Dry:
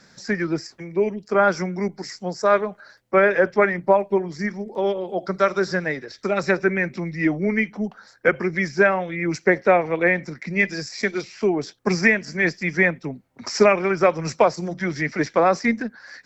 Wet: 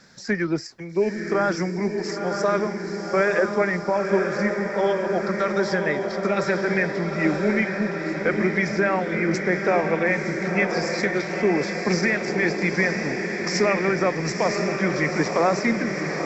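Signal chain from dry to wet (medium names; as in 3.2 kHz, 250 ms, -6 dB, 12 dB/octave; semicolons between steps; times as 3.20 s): peak limiter -12.5 dBFS, peak gain reduction 9 dB; on a send: echo that smears into a reverb 968 ms, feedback 68%, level -5 dB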